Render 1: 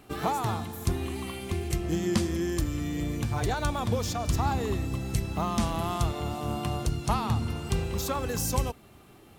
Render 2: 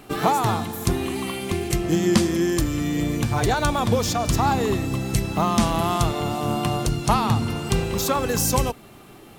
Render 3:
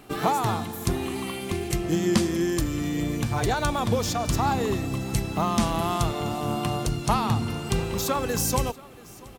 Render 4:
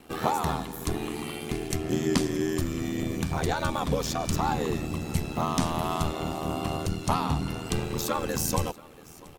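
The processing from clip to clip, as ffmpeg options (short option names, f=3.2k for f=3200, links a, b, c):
-af "equalizer=f=71:t=o:w=0.54:g=-14.5,volume=8.5dB"
-af "aecho=1:1:681:0.0794,volume=-3.5dB"
-af "aeval=exprs='val(0)*sin(2*PI*40*n/s)':c=same"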